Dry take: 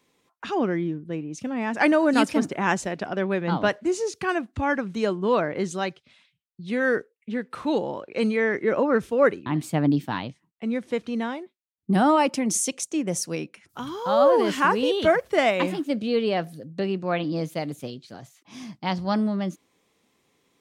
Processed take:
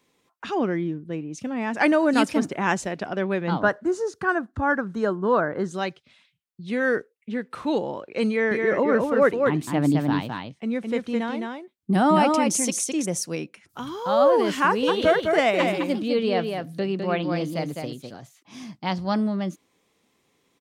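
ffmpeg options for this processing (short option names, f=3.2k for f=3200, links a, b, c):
-filter_complex "[0:a]asettb=1/sr,asplit=3[a][b][c];[a]atrim=end=3.604[d];[b]atrim=start=3.6:end=5.74,asetpts=PTS-STARTPTS,afade=t=in:d=0.004:c=qsin,afade=t=out:st=2.136:d=0.004:c=qsin,highshelf=f=1.9k:t=q:w=3:g=-6.5[e];[c]atrim=start=5.736[f];[d][e]acrossfade=d=0.004:c1=hsin:c2=qsin[g];[g][f]acrossfade=d=0.004:c1=qsin:c2=hsin,asettb=1/sr,asplit=3[h][i][j];[h]atrim=end=8.304[k];[i]atrim=start=8.3:end=13.07,asetpts=PTS-STARTPTS,afade=t=in:d=0.004:c=qsin,afade=t=out:st=4.766:d=0.004:c=qsin,aecho=1:1:212:0.668,atrim=end_sample=210357[l];[j]atrim=start=13.066[m];[k][l]acrossfade=d=0.004:c1=hsin:c2=qsin[n];[n][m]acrossfade=d=0.004:c1=qsin:c2=hsin,asplit=3[o][p][q];[o]afade=t=out:st=14.87:d=0.02[r];[p]aecho=1:1:206:0.562,afade=t=in:st=14.87:d=0.02,afade=t=out:st=18.09:d=0.02[s];[q]afade=t=in:st=18.09:d=0.02[t];[r][s][t]amix=inputs=3:normalize=0"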